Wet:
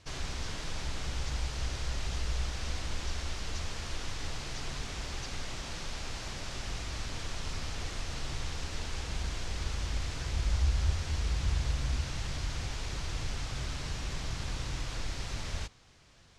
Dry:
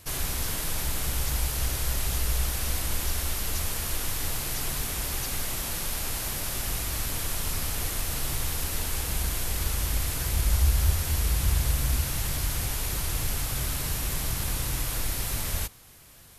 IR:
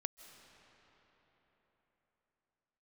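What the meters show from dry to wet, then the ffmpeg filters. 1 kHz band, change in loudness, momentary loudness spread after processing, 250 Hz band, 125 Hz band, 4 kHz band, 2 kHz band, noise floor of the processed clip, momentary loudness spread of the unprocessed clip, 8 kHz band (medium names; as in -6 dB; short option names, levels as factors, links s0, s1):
-5.5 dB, -8.0 dB, 7 LU, -5.5 dB, -5.5 dB, -5.5 dB, -5.5 dB, -41 dBFS, 4 LU, -13.5 dB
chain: -af "lowpass=f=6300:w=0.5412,lowpass=f=6300:w=1.3066,volume=0.531"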